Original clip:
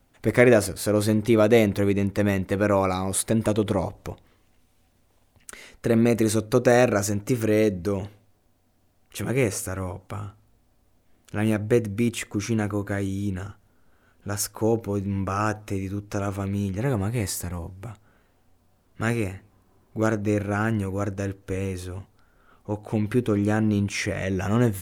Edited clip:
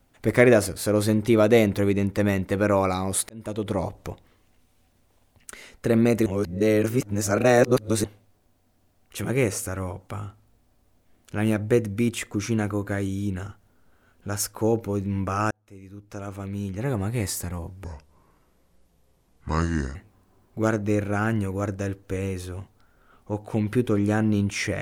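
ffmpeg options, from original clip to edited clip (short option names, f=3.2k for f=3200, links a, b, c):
-filter_complex "[0:a]asplit=7[a][b][c][d][e][f][g];[a]atrim=end=3.29,asetpts=PTS-STARTPTS,afade=t=out:st=3.286:d=0.004:c=hsin[h];[b]atrim=start=3.29:end=6.262,asetpts=PTS-STARTPTS,afade=t=in:d=0.59[i];[c]atrim=start=6.258:end=8.042,asetpts=PTS-STARTPTS,areverse[j];[d]atrim=start=8.038:end=15.51,asetpts=PTS-STARTPTS,afade=t=out:st=7.468:d=0.004:c=hsin[k];[e]atrim=start=15.51:end=17.844,asetpts=PTS-STARTPTS,afade=t=in:d=1.73[l];[f]atrim=start=17.84:end=19.34,asetpts=PTS-STARTPTS,asetrate=31311,aresample=44100,atrim=end_sample=93169,asetpts=PTS-STARTPTS[m];[g]atrim=start=19.336[n];[h][i]concat=n=2:v=0:a=1[o];[o][j]acrossfade=d=0.004:c1=hsin:c2=hsin[p];[k][l]concat=n=2:v=0:a=1[q];[p][q]acrossfade=d=0.004:c1=hsin:c2=hsin[r];[r][m]acrossfade=d=0.004:c1=hsin:c2=hsin[s];[s][n]acrossfade=d=0.004:c1=hsin:c2=hsin"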